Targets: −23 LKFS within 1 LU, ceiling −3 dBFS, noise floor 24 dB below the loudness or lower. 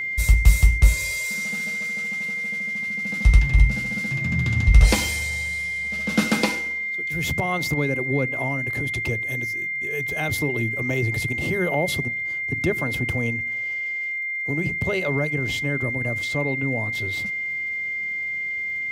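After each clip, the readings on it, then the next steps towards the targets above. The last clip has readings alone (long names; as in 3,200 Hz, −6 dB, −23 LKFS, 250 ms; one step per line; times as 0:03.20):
crackle rate 45 per second; interfering tone 2,100 Hz; level of the tone −25 dBFS; integrated loudness −23.0 LKFS; sample peak −2.5 dBFS; target loudness −23.0 LKFS
→ click removal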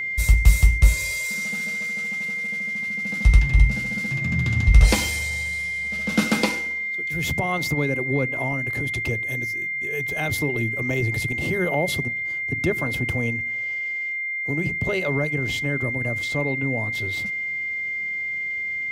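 crackle rate 0.26 per second; interfering tone 2,100 Hz; level of the tone −25 dBFS
→ notch filter 2,100 Hz, Q 30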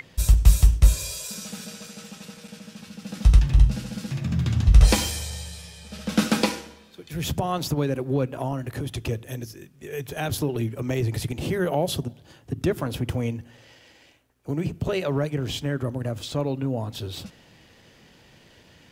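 interfering tone none found; integrated loudness −25.0 LKFS; sample peak −3.0 dBFS; target loudness −23.0 LKFS
→ level +2 dB
brickwall limiter −3 dBFS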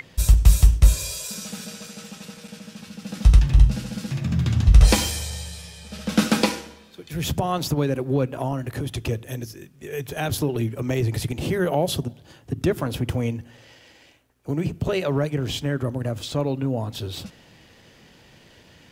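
integrated loudness −23.0 LKFS; sample peak −3.0 dBFS; background noise floor −53 dBFS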